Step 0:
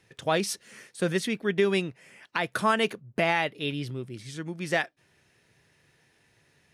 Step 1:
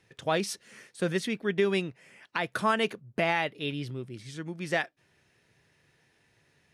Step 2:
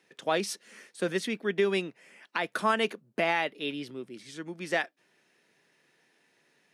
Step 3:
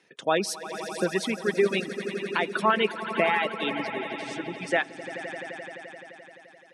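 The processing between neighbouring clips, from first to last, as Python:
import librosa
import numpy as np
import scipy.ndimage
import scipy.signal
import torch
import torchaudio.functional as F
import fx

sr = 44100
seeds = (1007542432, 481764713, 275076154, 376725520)

y1 = fx.high_shelf(x, sr, hz=8700.0, db=-5.0)
y1 = y1 * 10.0 ** (-2.0 / 20.0)
y2 = scipy.signal.sosfilt(scipy.signal.butter(4, 200.0, 'highpass', fs=sr, output='sos'), y1)
y3 = fx.spec_gate(y2, sr, threshold_db=-25, keep='strong')
y3 = fx.echo_swell(y3, sr, ms=86, loudest=5, wet_db=-11.0)
y3 = fx.dereverb_blind(y3, sr, rt60_s=1.6)
y3 = y3 * 10.0 ** (4.0 / 20.0)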